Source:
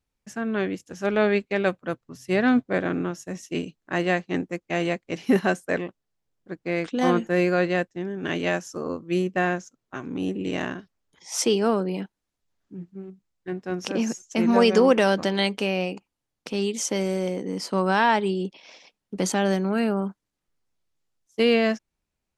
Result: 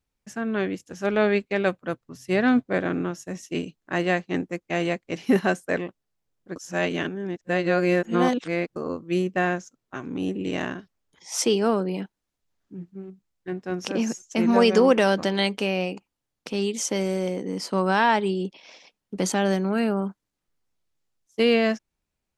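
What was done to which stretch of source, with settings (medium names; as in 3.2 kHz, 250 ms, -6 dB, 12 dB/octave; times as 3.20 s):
6.56–8.76 s: reverse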